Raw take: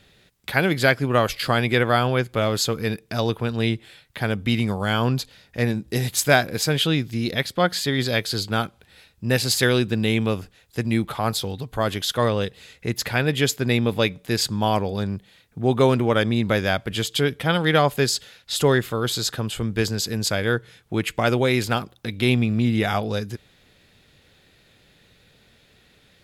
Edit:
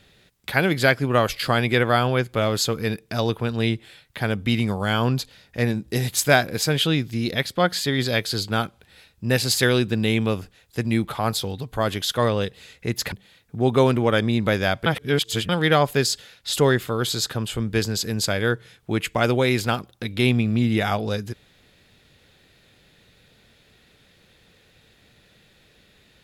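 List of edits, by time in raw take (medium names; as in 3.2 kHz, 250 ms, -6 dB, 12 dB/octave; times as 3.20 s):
13.12–15.15 s: delete
16.89–17.52 s: reverse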